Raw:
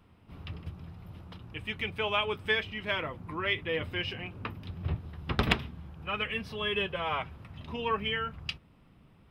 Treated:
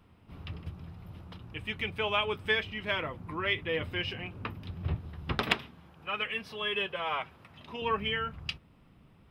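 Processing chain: 5.38–7.82 HPF 380 Hz 6 dB/oct

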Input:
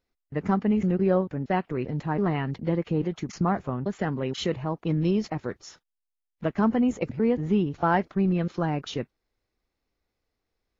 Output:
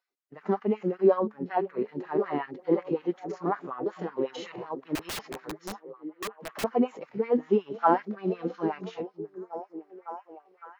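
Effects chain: dynamic EQ 1000 Hz, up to +4 dB, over -41 dBFS, Q 1.5; harmonic-percussive split percussive -18 dB; LFO high-pass sine 5.4 Hz 310–1600 Hz; on a send: delay with a stepping band-pass 0.557 s, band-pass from 210 Hz, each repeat 0.7 oct, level -7 dB; 4.95–6.64 on the sum: wrapped overs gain 29.5 dB

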